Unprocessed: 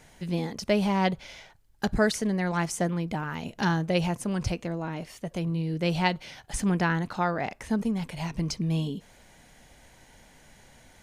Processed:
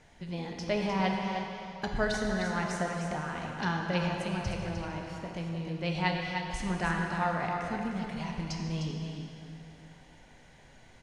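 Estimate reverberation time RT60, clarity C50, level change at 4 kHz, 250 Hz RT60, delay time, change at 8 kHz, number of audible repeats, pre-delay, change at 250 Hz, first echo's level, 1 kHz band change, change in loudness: 2.7 s, 0.5 dB, -3.0 dB, 2.7 s, 0.305 s, -8.0 dB, 1, 12 ms, -5.5 dB, -7.0 dB, -2.0 dB, -4.5 dB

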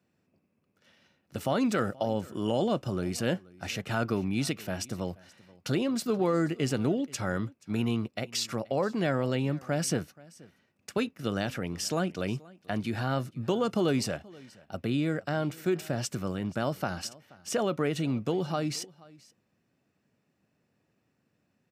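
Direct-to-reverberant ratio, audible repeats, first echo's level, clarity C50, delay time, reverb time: none, 1, -23.0 dB, none, 0.479 s, none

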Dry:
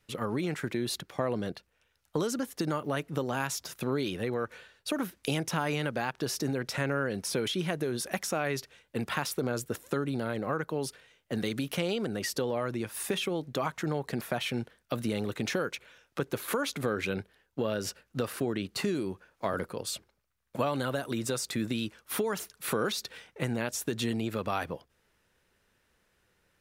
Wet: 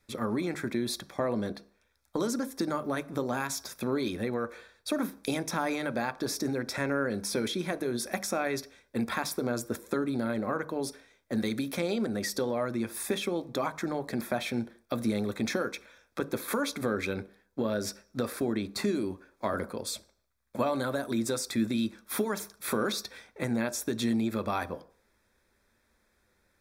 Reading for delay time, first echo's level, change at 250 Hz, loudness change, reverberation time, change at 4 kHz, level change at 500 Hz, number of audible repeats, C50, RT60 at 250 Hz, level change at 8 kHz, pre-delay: none, none, +2.5 dB, +0.5 dB, 0.50 s, -1.5 dB, +0.5 dB, none, 20.5 dB, 0.40 s, 0.0 dB, 3 ms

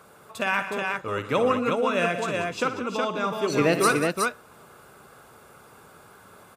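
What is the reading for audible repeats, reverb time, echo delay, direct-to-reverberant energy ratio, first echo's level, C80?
4, none, 57 ms, none, -11.0 dB, none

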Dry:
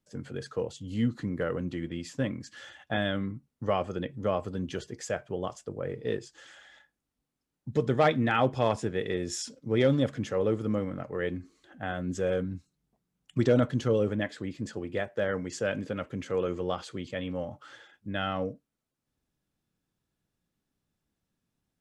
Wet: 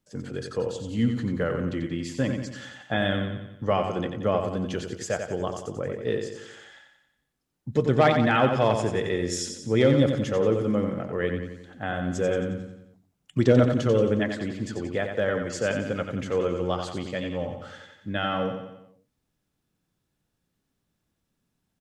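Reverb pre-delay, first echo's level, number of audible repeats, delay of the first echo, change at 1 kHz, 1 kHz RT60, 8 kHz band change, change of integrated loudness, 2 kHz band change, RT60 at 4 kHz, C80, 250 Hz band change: none, -6.5 dB, 5, 90 ms, +4.5 dB, none, +4.5 dB, +4.5 dB, +4.5 dB, none, none, +5.0 dB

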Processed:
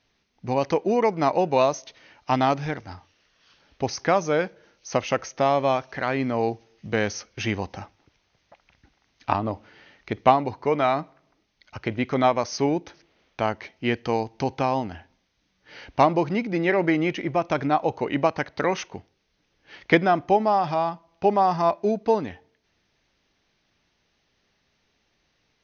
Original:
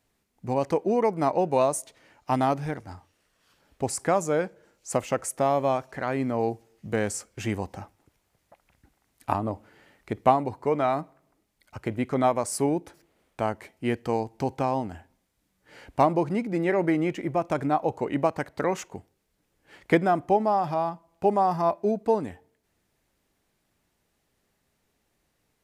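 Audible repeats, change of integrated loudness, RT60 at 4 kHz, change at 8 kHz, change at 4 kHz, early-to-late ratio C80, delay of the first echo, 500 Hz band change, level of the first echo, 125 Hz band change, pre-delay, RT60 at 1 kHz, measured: none, +2.5 dB, none, -3.5 dB, +8.5 dB, none, none, +2.0 dB, none, +1.5 dB, none, none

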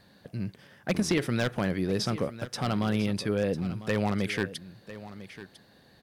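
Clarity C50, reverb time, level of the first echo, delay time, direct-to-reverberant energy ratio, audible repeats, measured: none, none, -15.0 dB, 1 s, none, 1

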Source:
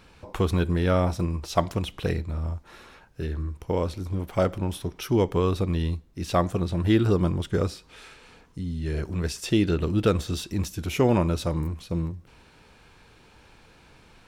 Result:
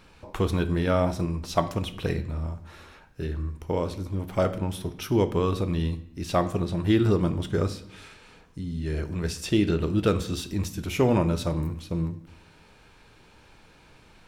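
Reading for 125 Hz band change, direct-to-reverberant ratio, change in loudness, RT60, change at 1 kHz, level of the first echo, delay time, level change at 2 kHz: -1.0 dB, 9.5 dB, -0.5 dB, 0.65 s, -0.5 dB, none, none, -0.5 dB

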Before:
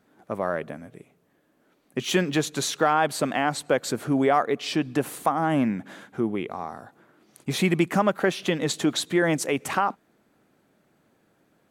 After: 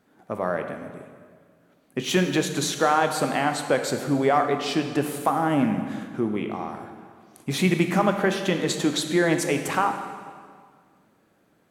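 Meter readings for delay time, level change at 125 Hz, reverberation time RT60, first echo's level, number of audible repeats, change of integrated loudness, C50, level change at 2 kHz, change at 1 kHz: none, +2.0 dB, 1.9 s, none, none, +1.0 dB, 7.0 dB, +1.0 dB, +1.0 dB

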